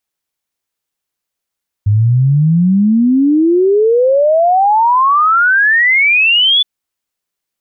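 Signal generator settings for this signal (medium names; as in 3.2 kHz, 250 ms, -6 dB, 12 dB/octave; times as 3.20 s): log sweep 100 Hz -> 3.5 kHz 4.77 s -7 dBFS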